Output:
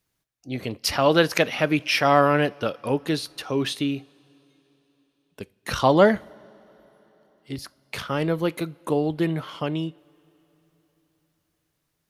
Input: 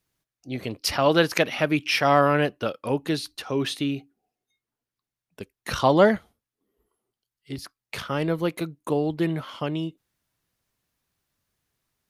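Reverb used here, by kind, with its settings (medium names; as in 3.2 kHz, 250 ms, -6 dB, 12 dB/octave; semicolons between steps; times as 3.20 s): two-slope reverb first 0.33 s, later 4.1 s, from -18 dB, DRR 19.5 dB; trim +1 dB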